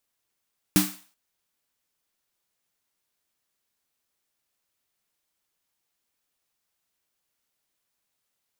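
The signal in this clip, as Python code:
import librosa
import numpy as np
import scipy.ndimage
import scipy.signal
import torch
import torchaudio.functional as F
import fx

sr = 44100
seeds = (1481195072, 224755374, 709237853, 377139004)

y = fx.drum_snare(sr, seeds[0], length_s=0.38, hz=190.0, second_hz=300.0, noise_db=-4.0, noise_from_hz=660.0, decay_s=0.29, noise_decay_s=0.43)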